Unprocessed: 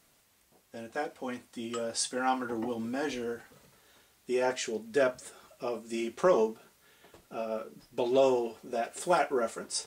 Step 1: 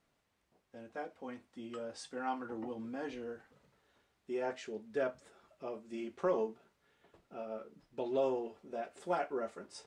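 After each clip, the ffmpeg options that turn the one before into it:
-af "aemphasis=mode=reproduction:type=75fm,volume=-8.5dB"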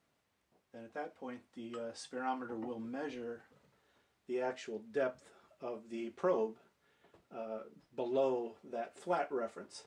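-af "highpass=62"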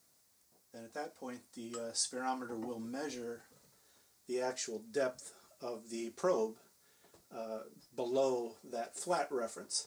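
-af "aexciter=amount=6.9:drive=4.3:freq=4.3k"

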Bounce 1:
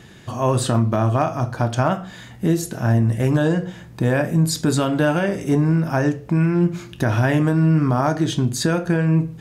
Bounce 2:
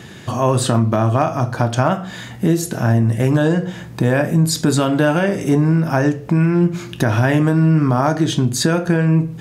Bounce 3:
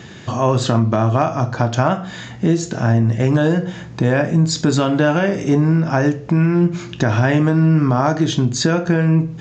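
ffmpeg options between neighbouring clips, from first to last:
-filter_complex "[0:a]highpass=78,asplit=2[a][b];[b]acompressor=threshold=-26dB:ratio=6,volume=3dB[c];[a][c]amix=inputs=2:normalize=0"
-af "aresample=16000,aresample=44100"

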